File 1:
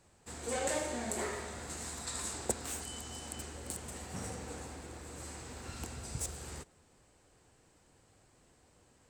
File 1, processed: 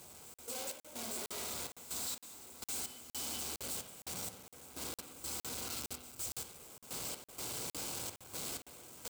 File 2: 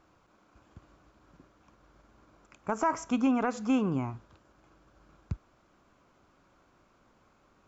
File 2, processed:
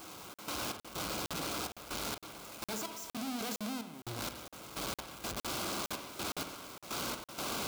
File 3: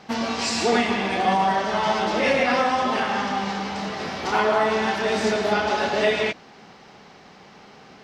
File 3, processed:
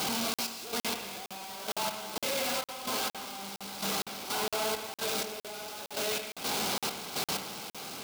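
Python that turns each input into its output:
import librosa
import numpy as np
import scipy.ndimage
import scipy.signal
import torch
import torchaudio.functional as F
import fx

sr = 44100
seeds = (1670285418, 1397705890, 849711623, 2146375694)

p1 = np.sign(x) * np.sqrt(np.mean(np.square(x)))
p2 = fx.highpass(p1, sr, hz=140.0, slope=6)
p3 = fx.step_gate(p2, sr, bpm=63, pattern='..x.xxx.x', floor_db=-12.0, edge_ms=4.5)
p4 = fx.high_shelf(p3, sr, hz=7500.0, db=9.5)
p5 = fx.notch(p4, sr, hz=1800.0, q=5.1)
p6 = np.clip(p5, -10.0 ** (-32.5 / 20.0), 10.0 ** (-32.5 / 20.0))
p7 = p5 + (p6 * 10.0 ** (-5.0 / 20.0))
p8 = fx.over_compress(p7, sr, threshold_db=-32.0, ratio=-1.0)
p9 = fx.dynamic_eq(p8, sr, hz=4300.0, q=1.3, threshold_db=-49.0, ratio=4.0, max_db=5)
p10 = fx.rev_spring(p9, sr, rt60_s=1.1, pass_ms=(56,), chirp_ms=70, drr_db=8.0)
p11 = fx.buffer_crackle(p10, sr, first_s=0.34, period_s=0.46, block=2048, kind='zero')
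y = p11 * 10.0 ** (-6.5 / 20.0)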